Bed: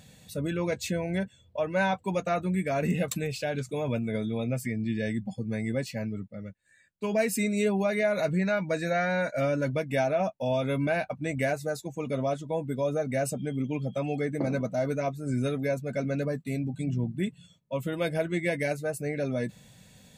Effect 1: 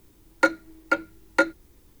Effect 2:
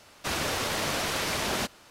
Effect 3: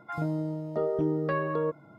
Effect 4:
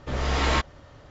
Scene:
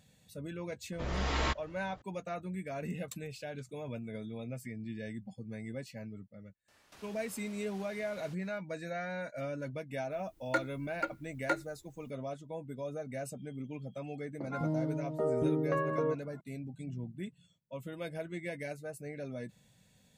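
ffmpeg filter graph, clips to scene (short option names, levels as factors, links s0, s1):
-filter_complex "[0:a]volume=0.266[s0];[2:a]acompressor=threshold=0.00891:ratio=6:attack=3.2:release=140:knee=1:detection=peak[s1];[3:a]highshelf=f=3500:g=-9[s2];[4:a]atrim=end=1.1,asetpts=PTS-STARTPTS,volume=0.376,afade=t=in:d=0.004:c=hsin,afade=t=out:st=1.096:d=0.004:c=hsin,adelay=920[s3];[s1]atrim=end=1.9,asetpts=PTS-STARTPTS,volume=0.224,afade=t=in:d=0.004:c=hsin,afade=t=out:st=1.896:d=0.004:c=hsin,adelay=6680[s4];[1:a]atrim=end=2,asetpts=PTS-STARTPTS,volume=0.251,afade=t=in:d=0.004:c=hsin,afade=t=out:st=1.996:d=0.004:c=hsin,adelay=10110[s5];[s2]atrim=end=1.98,asetpts=PTS-STARTPTS,volume=0.708,afade=t=in:d=0.004:c=hsin,afade=t=out:st=1.976:d=0.004:c=hsin,adelay=14430[s6];[s0][s3][s4][s5][s6]amix=inputs=5:normalize=0"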